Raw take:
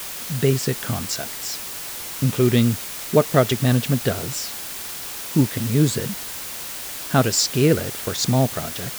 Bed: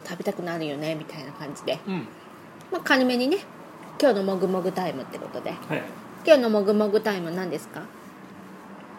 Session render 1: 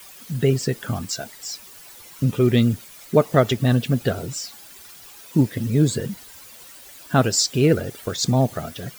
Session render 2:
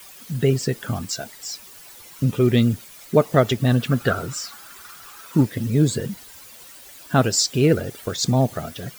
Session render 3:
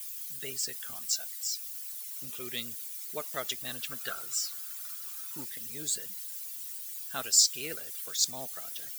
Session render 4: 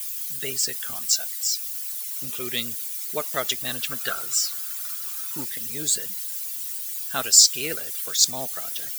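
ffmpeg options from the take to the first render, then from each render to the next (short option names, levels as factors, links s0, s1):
-af "afftdn=nr=14:nf=-32"
-filter_complex "[0:a]asettb=1/sr,asplit=3[s0][s1][s2];[s0]atrim=end=3.794[s3];[s1]atrim=start=3.79:end=5.45,asetpts=PTS-STARTPTS,afade=t=in:d=0.004:c=qsin,afade=t=out:st=1.656:d=0.004:c=qsin,equalizer=f=1300:w=2.2:g=14[s4];[s2]atrim=start=5.446[s5];[s3][s4]acrossfade=d=0.004:c1=hsin:c2=qsin[s6];[s6][s5]acrossfade=d=0.004:c1=qsin:c2=hsin"
-af "aderivative"
-af "volume=2.82,alimiter=limit=0.794:level=0:latency=1"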